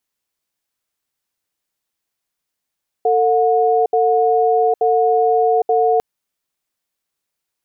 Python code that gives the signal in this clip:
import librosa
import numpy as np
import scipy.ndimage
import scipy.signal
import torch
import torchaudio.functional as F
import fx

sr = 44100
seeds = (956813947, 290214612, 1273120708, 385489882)

y = fx.cadence(sr, length_s=2.95, low_hz=449.0, high_hz=725.0, on_s=0.81, off_s=0.07, level_db=-14.5)